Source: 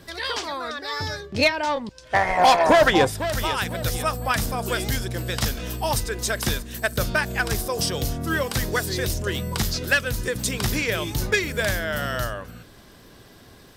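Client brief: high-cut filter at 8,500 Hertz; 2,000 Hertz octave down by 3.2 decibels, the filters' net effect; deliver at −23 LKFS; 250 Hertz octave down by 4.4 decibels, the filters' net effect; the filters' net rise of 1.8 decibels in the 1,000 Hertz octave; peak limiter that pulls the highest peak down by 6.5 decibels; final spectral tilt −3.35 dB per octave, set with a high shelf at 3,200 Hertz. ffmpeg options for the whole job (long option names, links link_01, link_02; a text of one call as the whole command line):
ffmpeg -i in.wav -af "lowpass=8500,equalizer=frequency=250:width_type=o:gain=-6.5,equalizer=frequency=1000:width_type=o:gain=4,equalizer=frequency=2000:width_type=o:gain=-6.5,highshelf=frequency=3200:gain=3,volume=2.5dB,alimiter=limit=-10dB:level=0:latency=1" out.wav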